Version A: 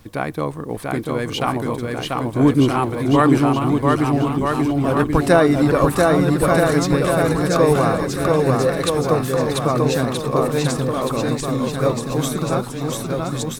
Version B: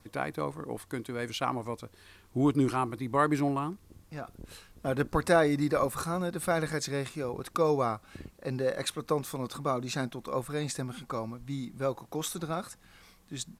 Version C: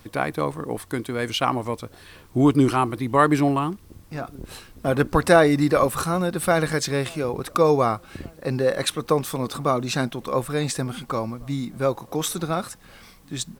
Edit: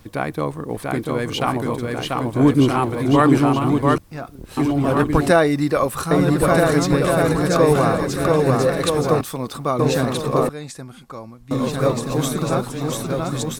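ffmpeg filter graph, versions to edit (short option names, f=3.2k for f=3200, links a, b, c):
-filter_complex "[2:a]asplit=3[a][b][c];[0:a]asplit=5[d][e][f][g][h];[d]atrim=end=3.982[i];[a]atrim=start=3.978:end=4.572[j];[e]atrim=start=4.568:end=5.312[k];[b]atrim=start=5.308:end=6.112[l];[f]atrim=start=6.108:end=9.212[m];[c]atrim=start=9.208:end=9.792[n];[g]atrim=start=9.788:end=10.492[o];[1:a]atrim=start=10.488:end=11.512[p];[h]atrim=start=11.508[q];[i][j]acrossfade=d=0.004:c1=hsin:c2=hsin[r];[r][k]acrossfade=d=0.004:c1=hsin:c2=hsin[s];[s][l]acrossfade=d=0.004:c1=hsin:c2=hsin[t];[t][m]acrossfade=d=0.004:c1=hsin:c2=hsin[u];[u][n]acrossfade=d=0.004:c1=hsin:c2=hsin[v];[v][o]acrossfade=d=0.004:c1=hsin:c2=hsin[w];[w][p]acrossfade=d=0.004:c1=hsin:c2=hsin[x];[x][q]acrossfade=d=0.004:c1=hsin:c2=hsin"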